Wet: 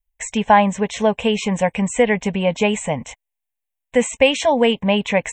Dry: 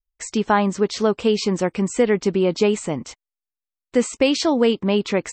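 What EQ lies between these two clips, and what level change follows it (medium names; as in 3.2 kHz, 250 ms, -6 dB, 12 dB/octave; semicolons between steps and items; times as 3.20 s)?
peaking EQ 130 Hz -3 dB 1.7 oct; static phaser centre 1.3 kHz, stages 6; +8.0 dB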